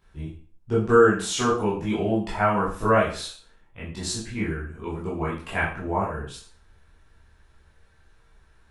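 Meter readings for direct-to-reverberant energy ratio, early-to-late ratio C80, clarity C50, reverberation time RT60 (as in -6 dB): -9.0 dB, 9.5 dB, 5.0 dB, 0.45 s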